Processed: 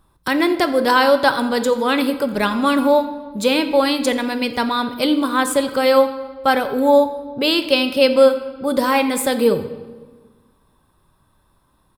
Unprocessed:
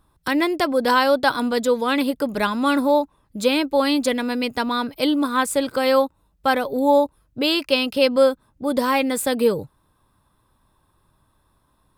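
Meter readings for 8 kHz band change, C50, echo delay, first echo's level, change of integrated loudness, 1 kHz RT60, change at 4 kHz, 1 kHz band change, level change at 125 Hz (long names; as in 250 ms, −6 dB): +3.0 dB, 11.5 dB, 86 ms, −20.0 dB, +3.0 dB, 1.4 s, +3.0 dB, +3.0 dB, can't be measured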